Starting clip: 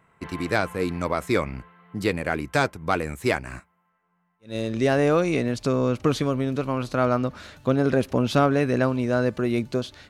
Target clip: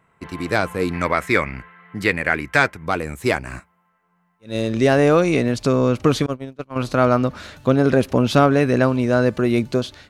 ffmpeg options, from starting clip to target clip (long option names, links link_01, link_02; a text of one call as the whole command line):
ffmpeg -i in.wav -filter_complex "[0:a]asettb=1/sr,asplit=3[link_01][link_02][link_03];[link_01]atrim=end=0.934[link_04];[link_02]atrim=start=0.93:end=2.87,asetpts=PTS-STARTPTS,afade=type=in:duration=0.004:curve=qsin,afade=type=out:start_time=1.936:duration=0.004:curve=qsin,equalizer=frequency=1900:width=1.3:gain=11[link_05];[link_03]atrim=start=2.866[link_06];[link_04][link_05]acrossfade=duration=0.004:curve1=hsin:curve2=qsin[link_07];[link_07][link_06]acrossfade=duration=0.004:curve1=qsin:curve2=hsin,dynaudnorm=framelen=330:gausssize=3:maxgain=6dB,asettb=1/sr,asplit=3[link_08][link_09][link_10];[link_08]atrim=end=6.264[link_11];[link_09]atrim=start=6.26:end=6.76,asetpts=PTS-STARTPTS,afade=type=in:duration=0.004:curve=qsin,afade=type=out:start_time=0.496:duration=0.004:curve=qsin,agate=range=-32dB:threshold=-16dB:ratio=16:detection=peak[link_12];[link_10]atrim=start=6.756[link_13];[link_11][link_12]acrossfade=duration=0.004:curve1=hsin:curve2=qsin[link_14];[link_14][link_13]acrossfade=duration=0.004:curve1=qsin:curve2=hsin" out.wav